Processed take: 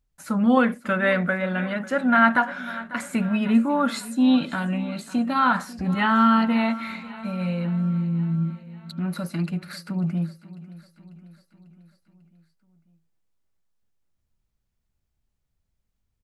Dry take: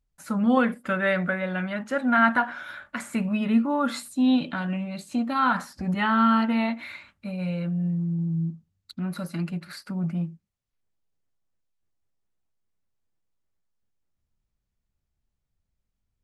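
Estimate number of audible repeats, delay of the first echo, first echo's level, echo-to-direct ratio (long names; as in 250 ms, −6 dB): 4, 545 ms, −18.0 dB, −16.5 dB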